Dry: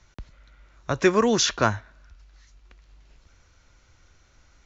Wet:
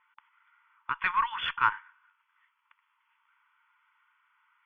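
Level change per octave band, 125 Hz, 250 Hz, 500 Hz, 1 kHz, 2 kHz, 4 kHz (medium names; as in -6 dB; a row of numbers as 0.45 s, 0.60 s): -24.5 dB, under -30 dB, under -35 dB, 0.0 dB, -1.5 dB, -9.5 dB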